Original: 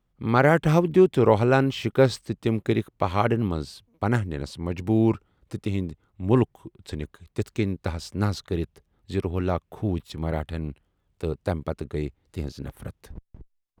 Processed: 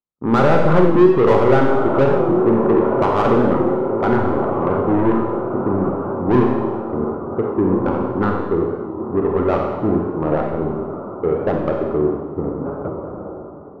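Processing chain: rippled Chebyshev low-pass 1.4 kHz, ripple 3 dB; echo that smears into a reverb 1541 ms, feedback 60%, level -13.5 dB; overdrive pedal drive 28 dB, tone 1.1 kHz, clips at -5.5 dBFS; expander -23 dBFS; Schroeder reverb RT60 1.2 s, combs from 31 ms, DRR 1 dB; warped record 45 rpm, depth 100 cents; trim -1 dB

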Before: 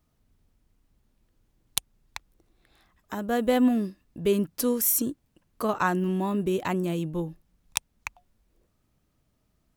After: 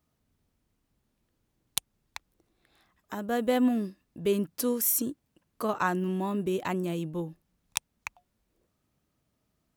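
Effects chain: high-pass 100 Hz 6 dB/octave; trim -2.5 dB

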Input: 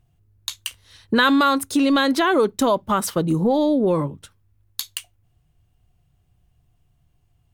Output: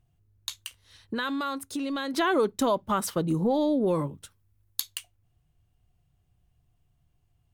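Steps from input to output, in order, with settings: 0.53–2.14 s: compression 1.5:1, threshold -36 dBFS, peak gain reduction 8.5 dB; 3.81–4.80 s: treble shelf 5.8 kHz +7.5 dB; trim -6 dB

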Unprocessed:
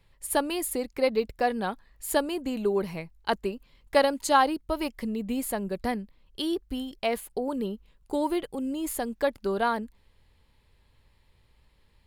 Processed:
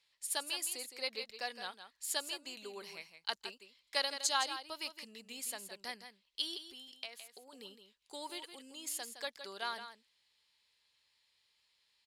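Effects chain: 6.70–7.53 s: compression 4:1, threshold -35 dBFS, peak gain reduction 11 dB; band-pass filter 5.2 kHz, Q 1.3; delay 164 ms -10 dB; trim +2.5 dB

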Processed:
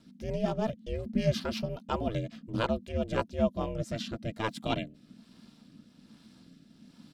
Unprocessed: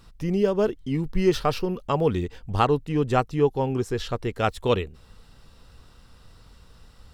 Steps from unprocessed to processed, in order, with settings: peaking EQ 4.1 kHz +5.5 dB 1.5 oct; comb 2.7 ms, depth 38%; ring modulator 220 Hz; rotary cabinet horn 5.5 Hz, later 1.2 Hz, at 3.28 s; trim -4 dB

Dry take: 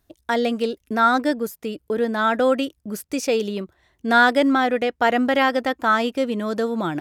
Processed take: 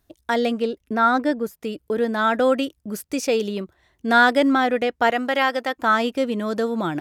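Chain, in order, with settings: 0.52–1.61 s: treble shelf 3.7 kHz -8.5 dB; 5.10–5.78 s: high-pass 500 Hz 6 dB/octave

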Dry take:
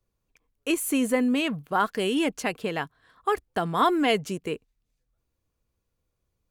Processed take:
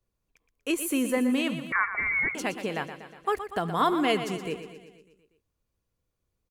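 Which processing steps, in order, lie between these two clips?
feedback delay 120 ms, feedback 59%, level -10.5 dB; 1.72–2.35 s: frequency inversion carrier 2.5 kHz; trim -2.5 dB

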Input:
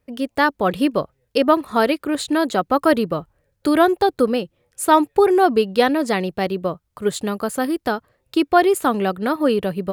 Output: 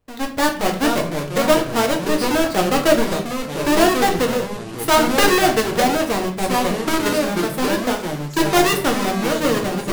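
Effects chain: square wave that keeps the level; formant shift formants +3 st; ever faster or slower copies 348 ms, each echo -4 st, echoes 3, each echo -6 dB; simulated room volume 59 m³, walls mixed, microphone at 0.53 m; trim -7.5 dB

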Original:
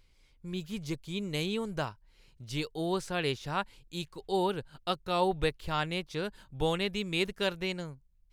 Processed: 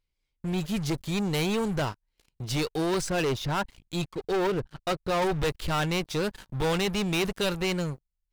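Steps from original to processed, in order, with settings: 3.01–5.22 s: resonances exaggerated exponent 1.5; waveshaping leveller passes 5; trim -7 dB

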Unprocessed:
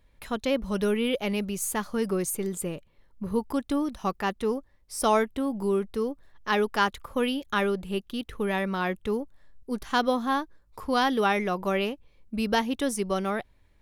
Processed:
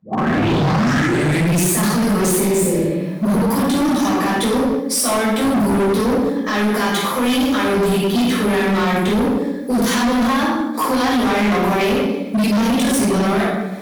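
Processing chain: tape start-up on the opening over 1.66 s; high-pass 180 Hz 24 dB/octave; treble shelf 4 kHz +7.5 dB; band-stop 2.8 kHz, Q 9.1; in parallel at +1 dB: compressor with a negative ratio -35 dBFS, ratio -1; on the sum: peak limiter -20 dBFS, peak gain reduction 13 dB; simulated room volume 460 m³, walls mixed, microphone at 5.9 m; hard clipper -17 dBFS, distortion -7 dB; spectral replace 2.53–3.01 s, 640–4700 Hz both; tape noise reduction on one side only encoder only; trim +3 dB

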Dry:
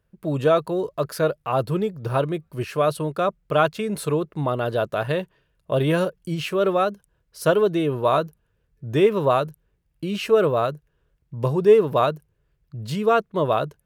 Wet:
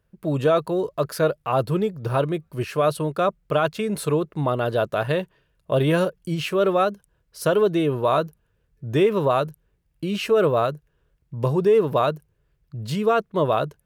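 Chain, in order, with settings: peak limiter -11 dBFS, peak gain reduction 6 dB; trim +1 dB

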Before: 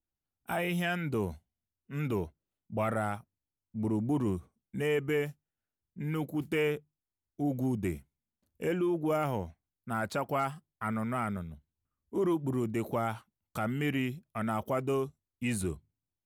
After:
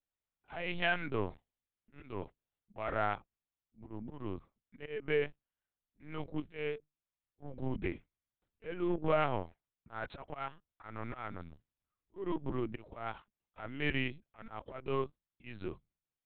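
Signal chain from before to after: bass shelf 320 Hz -9.5 dB; Chebyshev shaper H 3 -26 dB, 5 -38 dB, 7 -27 dB, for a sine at -20 dBFS; slow attack 311 ms; LPC vocoder at 8 kHz pitch kept; trim +4 dB

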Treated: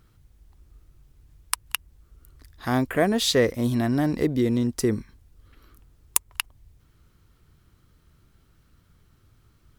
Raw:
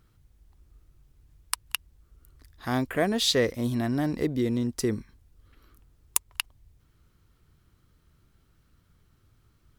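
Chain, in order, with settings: dynamic bell 4 kHz, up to -4 dB, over -42 dBFS, Q 0.86; trim +4 dB

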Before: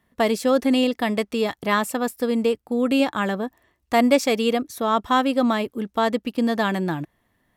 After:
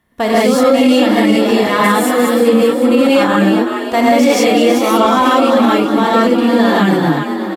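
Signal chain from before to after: in parallel at -5.5 dB: one-sided clip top -12.5 dBFS; on the sum: frequency-shifting echo 377 ms, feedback 50%, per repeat +47 Hz, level -8.5 dB; gated-style reverb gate 210 ms rising, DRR -7 dB; loudness maximiser +0.5 dB; trim -1 dB

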